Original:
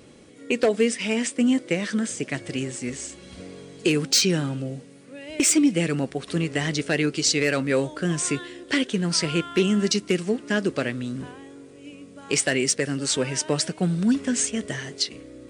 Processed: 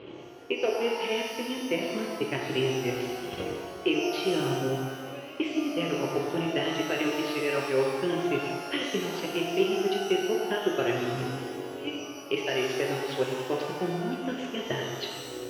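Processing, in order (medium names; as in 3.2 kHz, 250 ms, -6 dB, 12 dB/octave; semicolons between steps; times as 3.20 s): transient shaper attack +11 dB, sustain -11 dB; reverse; compression 16:1, threshold -30 dBFS, peak gain reduction 25 dB; reverse; cabinet simulation 100–3000 Hz, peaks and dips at 160 Hz -7 dB, 230 Hz -9 dB, 380 Hz +8 dB, 950 Hz +4 dB, 1.8 kHz -5 dB, 3 kHz +9 dB; pitch-shifted reverb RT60 1.7 s, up +12 st, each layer -8 dB, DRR -1 dB; trim +2.5 dB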